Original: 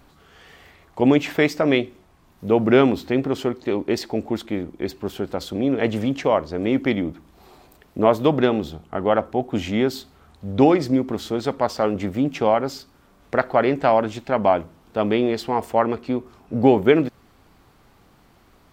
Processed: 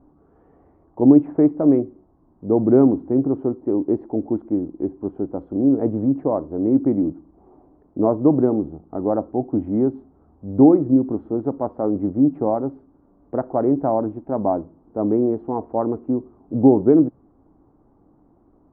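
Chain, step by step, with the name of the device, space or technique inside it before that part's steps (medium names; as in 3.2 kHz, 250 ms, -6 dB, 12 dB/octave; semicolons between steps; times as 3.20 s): under water (low-pass 960 Hz 24 dB/octave; peaking EQ 300 Hz +11 dB 0.55 oct); dynamic bell 130 Hz, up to +5 dB, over -31 dBFS, Q 1.7; trim -4 dB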